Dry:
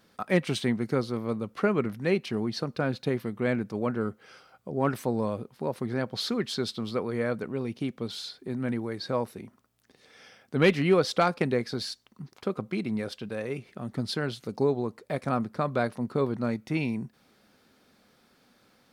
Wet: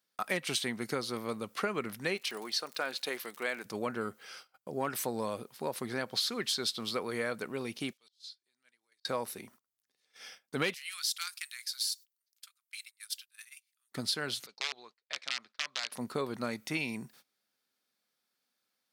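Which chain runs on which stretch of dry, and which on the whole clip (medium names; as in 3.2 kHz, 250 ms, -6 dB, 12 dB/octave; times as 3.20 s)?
2.16–3.64 s: Bessel high-pass 550 Hz + crackle 92 per s -45 dBFS
7.93–9.05 s: band-pass filter 5.1 kHz, Q 1.1 + compression 3:1, threshold -53 dBFS + slow attack 171 ms
10.74–13.92 s: high-pass 1.3 kHz 24 dB/octave + differentiator
14.46–15.92 s: integer overflow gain 18.5 dB + band-pass filter 4.1 kHz, Q 0.97 + distance through air 150 m
whole clip: gate -53 dBFS, range -23 dB; tilt EQ +3.5 dB/octave; compression 5:1, threshold -29 dBFS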